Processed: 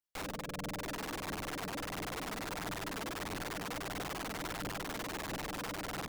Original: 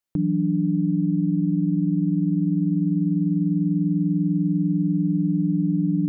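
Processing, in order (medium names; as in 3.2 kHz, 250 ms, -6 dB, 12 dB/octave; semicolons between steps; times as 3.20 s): reverb removal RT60 1.7 s; hum notches 50/100/150/200/250 Hz; reverb removal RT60 1.2 s; comb 2.1 ms, depth 46%; level rider gain up to 8 dB; feedback comb 66 Hz, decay 0.47 s, harmonics all, mix 80%; AM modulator 290 Hz, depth 85%; integer overflow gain 37.5 dB; phaser 1.5 Hz, delay 4.8 ms, feedback 30%; trim +3.5 dB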